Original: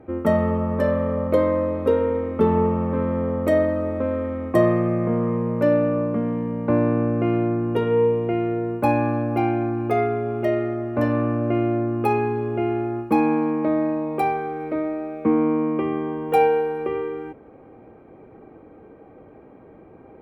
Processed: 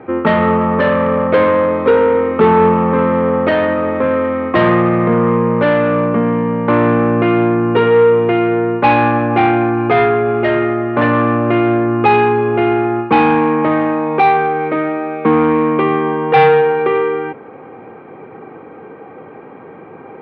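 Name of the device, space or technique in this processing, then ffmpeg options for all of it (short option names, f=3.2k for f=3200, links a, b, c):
overdrive pedal into a guitar cabinet: -filter_complex "[0:a]asplit=2[a][b];[b]highpass=f=720:p=1,volume=20dB,asoftclip=type=tanh:threshold=-4.5dB[c];[a][c]amix=inputs=2:normalize=0,lowpass=f=2.8k:p=1,volume=-6dB,highpass=100,equalizer=f=110:t=q:w=4:g=4,equalizer=f=160:t=q:w=4:g=5,equalizer=f=310:t=q:w=4:g=-4,equalizer=f=620:t=q:w=4:g=-8,lowpass=f=3.8k:w=0.5412,lowpass=f=3.8k:w=1.3066,volume=5dB"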